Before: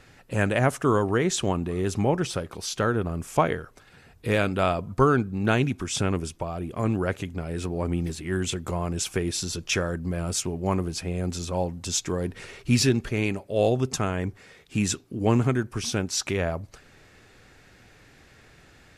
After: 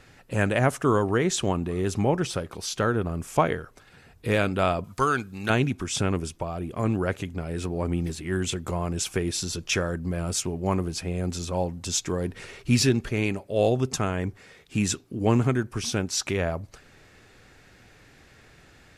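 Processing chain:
0:04.84–0:05.50: tilt shelving filter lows −9 dB, about 1,200 Hz

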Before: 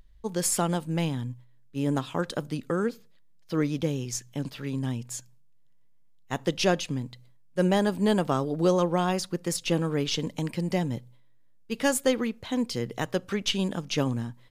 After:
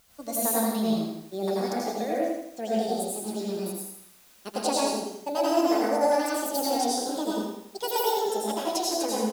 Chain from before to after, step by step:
gliding playback speed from 129% → 182%
high-pass filter 310 Hz 6 dB per octave
flat-topped bell 1,700 Hz −8.5 dB
background noise white −59 dBFS
flanger 0.51 Hz, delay 1.3 ms, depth 6.4 ms, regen −47%
repeating echo 82 ms, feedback 42%, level −5 dB
dense smooth reverb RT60 0.56 s, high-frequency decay 0.8×, pre-delay 85 ms, DRR −4.5 dB

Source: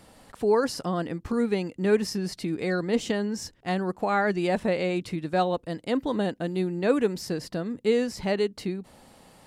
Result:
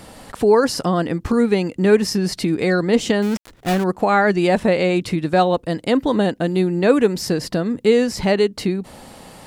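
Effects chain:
0:03.22–0:03.84: gap after every zero crossing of 0.26 ms
in parallel at 0 dB: downward compressor, threshold −33 dBFS, peak gain reduction 16 dB
on the sum: level +6.5 dB

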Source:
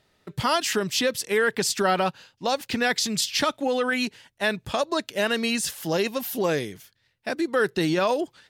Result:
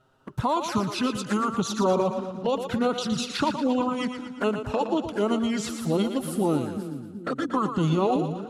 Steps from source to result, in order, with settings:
high shelf with overshoot 2,000 Hz −6.5 dB, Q 3
in parallel at +1.5 dB: downward compressor 8 to 1, threshold −30 dBFS, peak gain reduction 14.5 dB
on the sum: formants moved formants −4 semitones
flanger swept by the level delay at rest 7.9 ms, full sweep at −19 dBFS
echo with a time of its own for lows and highs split 330 Hz, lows 382 ms, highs 116 ms, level −8 dB
level −2 dB

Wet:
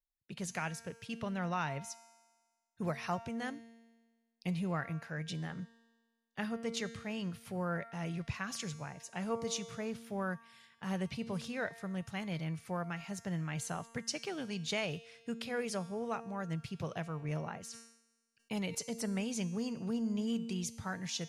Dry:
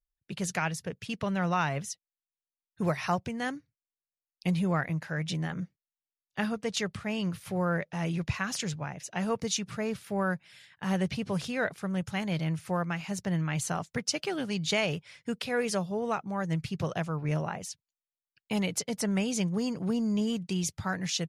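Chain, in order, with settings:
tuned comb filter 230 Hz, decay 1.4 s, mix 70%
0:17.65–0:18.75: level that may fall only so fast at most 83 dB per second
level +2.5 dB

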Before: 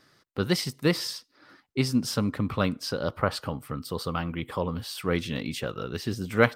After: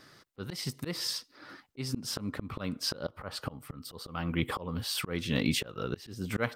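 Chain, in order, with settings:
volume swells 409 ms
level +5 dB

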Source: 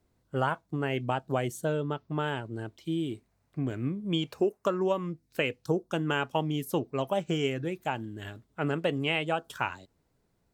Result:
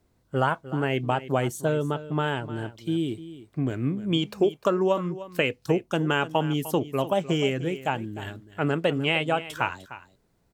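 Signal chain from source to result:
single-tap delay 302 ms −15 dB
level +4.5 dB

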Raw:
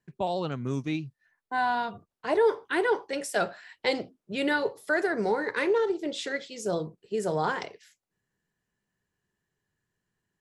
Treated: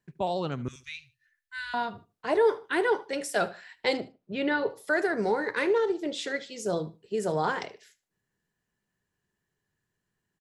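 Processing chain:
0:00.68–0:01.74: inverse Chebyshev band-stop filter 180–760 Hz, stop band 50 dB
0:03.97–0:04.70: high-frequency loss of the air 180 metres
on a send: repeating echo 75 ms, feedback 26%, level −19.5 dB

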